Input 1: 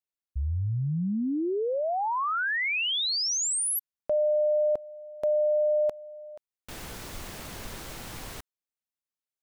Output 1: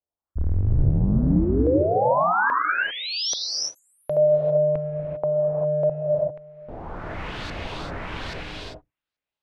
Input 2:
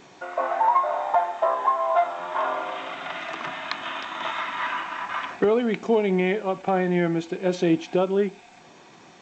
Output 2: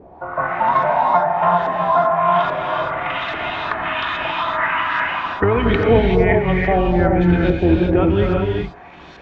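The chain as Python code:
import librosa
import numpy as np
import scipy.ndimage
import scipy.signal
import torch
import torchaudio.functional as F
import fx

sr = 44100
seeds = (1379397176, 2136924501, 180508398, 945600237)

y = fx.octave_divider(x, sr, octaves=2, level_db=0.0)
y = fx.dynamic_eq(y, sr, hz=630.0, q=1.3, threshold_db=-34.0, ratio=4.0, max_db=-4)
y = fx.filter_lfo_lowpass(y, sr, shape='saw_up', hz=1.2, low_hz=550.0, high_hz=4500.0, q=2.5)
y = fx.rev_gated(y, sr, seeds[0], gate_ms=420, shape='rising', drr_db=-0.5)
y = fx.end_taper(y, sr, db_per_s=370.0)
y = F.gain(torch.from_numpy(y), 3.5).numpy()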